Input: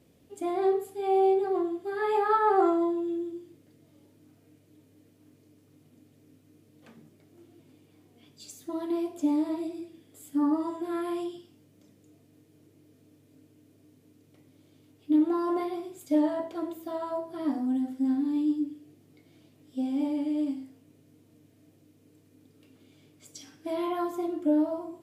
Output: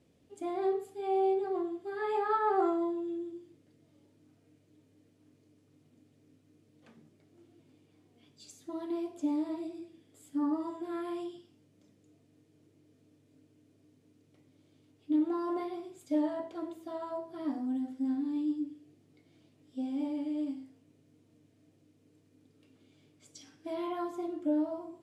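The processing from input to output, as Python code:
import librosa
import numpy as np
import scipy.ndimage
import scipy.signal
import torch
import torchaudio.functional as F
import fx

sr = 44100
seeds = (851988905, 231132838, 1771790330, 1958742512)

y = scipy.signal.sosfilt(scipy.signal.butter(2, 8900.0, 'lowpass', fs=sr, output='sos'), x)
y = F.gain(torch.from_numpy(y), -5.5).numpy()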